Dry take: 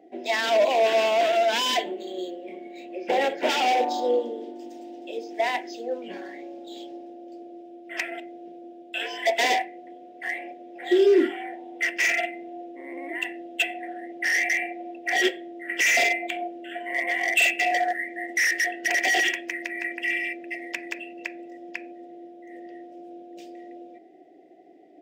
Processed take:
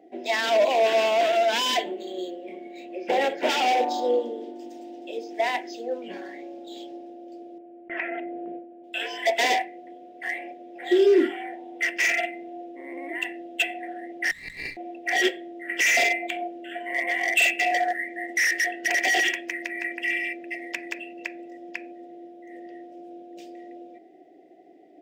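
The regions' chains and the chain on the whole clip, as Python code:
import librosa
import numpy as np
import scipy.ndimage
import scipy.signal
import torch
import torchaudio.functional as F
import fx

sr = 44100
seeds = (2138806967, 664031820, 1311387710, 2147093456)

y = fx.chain(x, sr, fx.gate_hold(open_db=-34.0, close_db=-40.0, hold_ms=71.0, range_db=-21, attack_ms=1.4, release_ms=100.0),
    fx.lowpass(hz=2300.0, slope=24),
    fx.env_flatten(amount_pct=50), at=(7.58, 8.84))
y = fx.chain(y, sr, fx.over_compress(threshold_db=-32.0, ratio=-0.5),
    fx.brickwall_highpass(low_hz=1000.0),
    fx.running_max(window=5), at=(14.31, 14.77))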